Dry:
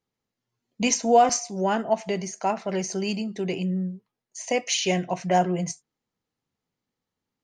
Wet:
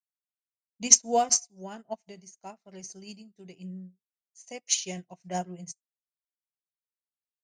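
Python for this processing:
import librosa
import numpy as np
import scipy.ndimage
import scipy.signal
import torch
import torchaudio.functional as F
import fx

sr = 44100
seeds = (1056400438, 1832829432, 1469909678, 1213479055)

y = fx.bass_treble(x, sr, bass_db=6, treble_db=13)
y = fx.upward_expand(y, sr, threshold_db=-37.0, expansion=2.5)
y = y * 10.0 ** (-1.5 / 20.0)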